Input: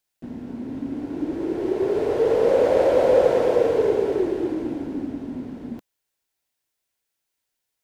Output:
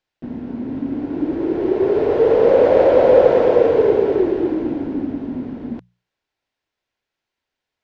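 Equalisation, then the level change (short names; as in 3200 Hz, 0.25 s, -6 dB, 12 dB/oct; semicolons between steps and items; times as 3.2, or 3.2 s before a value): air absorption 190 m; notches 60/120/180 Hz; +6.0 dB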